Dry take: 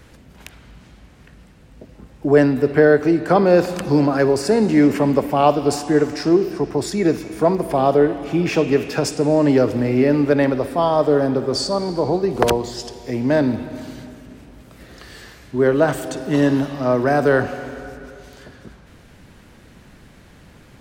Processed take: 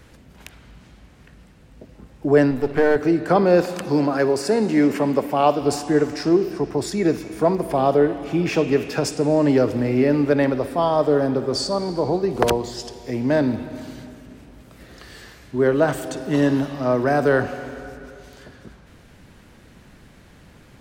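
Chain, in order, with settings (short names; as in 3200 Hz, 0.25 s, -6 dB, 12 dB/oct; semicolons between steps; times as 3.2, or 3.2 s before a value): 2.51–2.96 half-wave gain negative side -7 dB; 3.61–5.61 HPF 180 Hz 6 dB/oct; gain -2 dB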